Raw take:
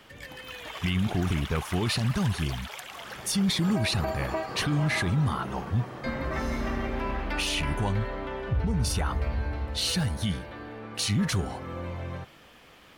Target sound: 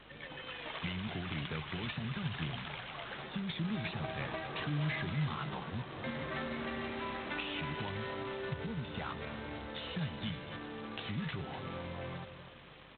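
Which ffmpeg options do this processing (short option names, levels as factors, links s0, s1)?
-filter_complex "[0:a]acrossover=split=140|1600[s0][s1][s2];[s0]acompressor=threshold=0.0178:ratio=4[s3];[s1]acompressor=threshold=0.0126:ratio=4[s4];[s2]acompressor=threshold=0.0158:ratio=4[s5];[s3][s4][s5]amix=inputs=3:normalize=0,highpass=f=110:w=0.5412,highpass=f=110:w=1.3066,highshelf=f=2300:g=-2.5,asplit=2[s6][s7];[s7]aecho=0:1:248:0.211[s8];[s6][s8]amix=inputs=2:normalize=0,aeval=exprs='val(0)+0.00112*(sin(2*PI*50*n/s)+sin(2*PI*2*50*n/s)/2+sin(2*PI*3*50*n/s)/3+sin(2*PI*4*50*n/s)/4+sin(2*PI*5*50*n/s)/5)':c=same,asplit=3[s9][s10][s11];[s9]afade=t=out:st=1.54:d=0.02[s12];[s10]adynamicequalizer=threshold=0.002:dfrequency=580:dqfactor=1.1:tfrequency=580:tqfactor=1.1:attack=5:release=100:ratio=0.375:range=2:mode=cutabove:tftype=bell,afade=t=in:st=1.54:d=0.02,afade=t=out:st=2.26:d=0.02[s13];[s11]afade=t=in:st=2.26:d=0.02[s14];[s12][s13][s14]amix=inputs=3:normalize=0,asplit=2[s15][s16];[s16]adelay=13,volume=0.355[s17];[s15][s17]amix=inputs=2:normalize=0,asplit=2[s18][s19];[s19]adelay=246,lowpass=f=3000:p=1,volume=0.224,asplit=2[s20][s21];[s21]adelay=246,lowpass=f=3000:p=1,volume=0.54,asplit=2[s22][s23];[s23]adelay=246,lowpass=f=3000:p=1,volume=0.54,asplit=2[s24][s25];[s25]adelay=246,lowpass=f=3000:p=1,volume=0.54,asplit=2[s26][s27];[s27]adelay=246,lowpass=f=3000:p=1,volume=0.54,asplit=2[s28][s29];[s29]adelay=246,lowpass=f=3000:p=1,volume=0.54[s30];[s20][s22][s24][s26][s28][s30]amix=inputs=6:normalize=0[s31];[s18][s31]amix=inputs=2:normalize=0,volume=0.668" -ar 8000 -c:a adpcm_g726 -b:a 16k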